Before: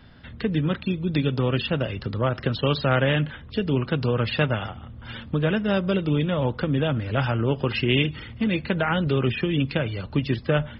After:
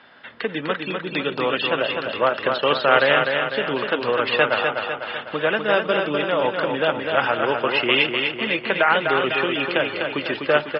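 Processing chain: band-pass 570–3000 Hz; on a send: feedback delay 250 ms, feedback 54%, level -5 dB; on the sum: trim +8.5 dB

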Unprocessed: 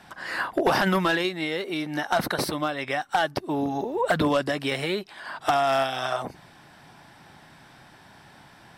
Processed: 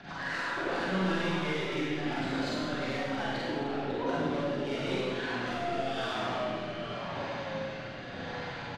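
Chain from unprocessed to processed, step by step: knee-point frequency compression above 3.6 kHz 1.5:1; low-pass 5.3 kHz 24 dB/octave; comb 7.1 ms, depth 34%; in parallel at -1.5 dB: peak limiter -21.5 dBFS, peak gain reduction 10 dB; on the sum: compression 2.5:1, threshold -38 dBFS, peak gain reduction 15.5 dB; ever faster or slower copies 134 ms, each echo -2 st, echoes 3, each echo -6 dB; saturation -32.5 dBFS, distortion -11 dB; rotary cabinet horn 8 Hz, later 0.9 Hz, at 3.61 s; Schroeder reverb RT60 1.5 s, combs from 33 ms, DRR -6.5 dB

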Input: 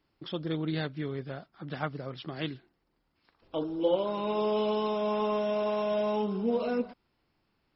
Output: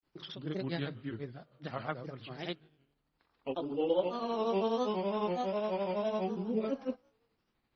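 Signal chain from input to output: hum notches 50/100/150 Hz; feedback comb 53 Hz, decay 1 s, harmonics all, mix 30%; granulator 149 ms, grains 12 per s, pitch spread up and down by 3 st

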